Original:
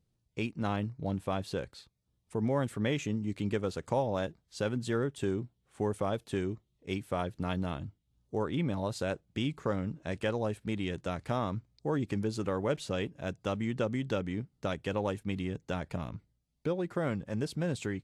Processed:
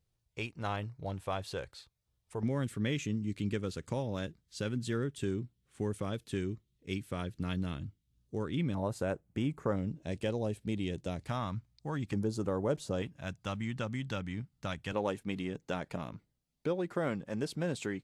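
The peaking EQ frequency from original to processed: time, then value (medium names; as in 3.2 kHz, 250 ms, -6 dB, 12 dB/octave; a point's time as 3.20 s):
peaking EQ -11 dB 1.4 oct
230 Hz
from 2.43 s 760 Hz
from 8.75 s 3.9 kHz
from 9.76 s 1.3 kHz
from 11.27 s 420 Hz
from 12.13 s 2.4 kHz
from 13.02 s 420 Hz
from 14.92 s 75 Hz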